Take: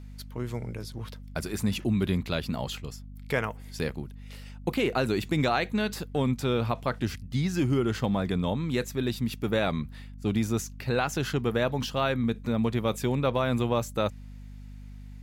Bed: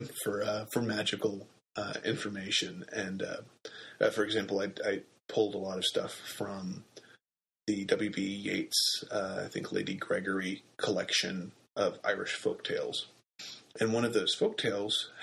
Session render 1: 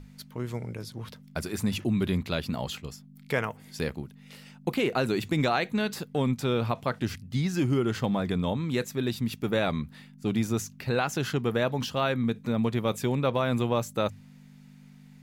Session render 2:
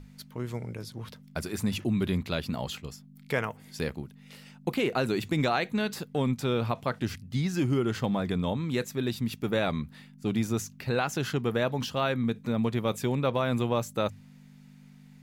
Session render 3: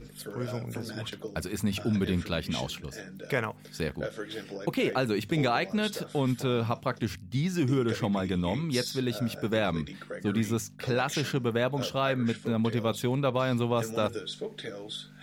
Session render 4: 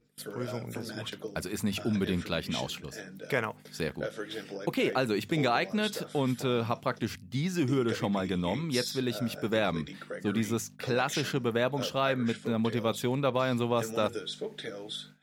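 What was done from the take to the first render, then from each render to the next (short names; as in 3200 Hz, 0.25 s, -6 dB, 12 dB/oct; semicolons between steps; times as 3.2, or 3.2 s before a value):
notches 50/100 Hz
gain -1 dB
add bed -7.5 dB
gate with hold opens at -36 dBFS; low shelf 82 Hz -12 dB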